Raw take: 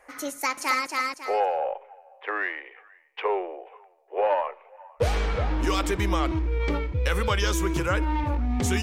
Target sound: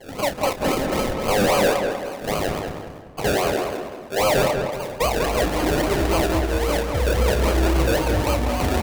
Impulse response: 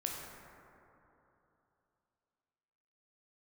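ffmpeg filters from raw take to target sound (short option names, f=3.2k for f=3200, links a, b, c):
-filter_complex "[0:a]equalizer=f=630:t=o:w=0.67:g=14,bandreject=f=50:t=h:w=6,bandreject=f=100:t=h:w=6,bandreject=f=150:t=h:w=6,bandreject=f=200:t=h:w=6,bandreject=f=250:t=h:w=6,bandreject=f=300:t=h:w=6,bandreject=f=350:t=h:w=6,bandreject=f=400:t=h:w=6,bandreject=f=450:t=h:w=6,asplit=2[a][b];[b]acompressor=threshold=-32dB:ratio=6,volume=0.5dB[c];[a][c]amix=inputs=2:normalize=0,crystalizer=i=0.5:c=0,acrusher=samples=34:mix=1:aa=0.000001:lfo=1:lforange=20.4:lforate=3.7,asoftclip=type=hard:threshold=-17.5dB,asplit=2[d][e];[e]adelay=30,volume=-10.5dB[f];[d][f]amix=inputs=2:normalize=0,asplit=2[g][h];[h]adelay=194,lowpass=f=2.2k:p=1,volume=-4dB,asplit=2[i][j];[j]adelay=194,lowpass=f=2.2k:p=1,volume=0.44,asplit=2[k][l];[l]adelay=194,lowpass=f=2.2k:p=1,volume=0.44,asplit=2[m][n];[n]adelay=194,lowpass=f=2.2k:p=1,volume=0.44,asplit=2[o][p];[p]adelay=194,lowpass=f=2.2k:p=1,volume=0.44,asplit=2[q][r];[r]adelay=194,lowpass=f=2.2k:p=1,volume=0.44[s];[i][k][m][o][q][s]amix=inputs=6:normalize=0[t];[g][t]amix=inputs=2:normalize=0"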